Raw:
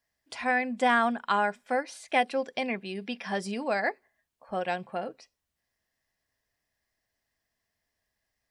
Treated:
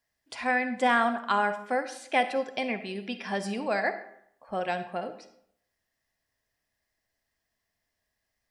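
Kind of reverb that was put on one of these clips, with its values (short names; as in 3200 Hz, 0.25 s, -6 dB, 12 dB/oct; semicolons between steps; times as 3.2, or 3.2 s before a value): digital reverb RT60 0.7 s, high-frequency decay 0.7×, pre-delay 15 ms, DRR 10 dB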